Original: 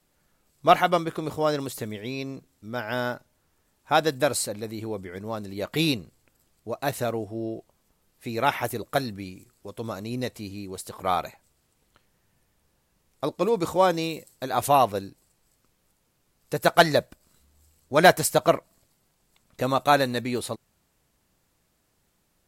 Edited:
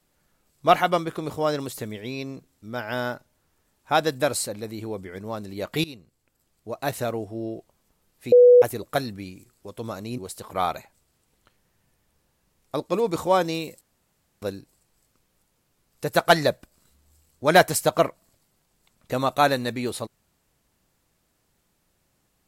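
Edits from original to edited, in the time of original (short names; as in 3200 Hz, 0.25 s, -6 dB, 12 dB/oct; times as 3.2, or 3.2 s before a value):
5.84–6.85 fade in, from -20 dB
8.32–8.62 bleep 491 Hz -8.5 dBFS
10.18–10.67 cut
14.3–14.91 room tone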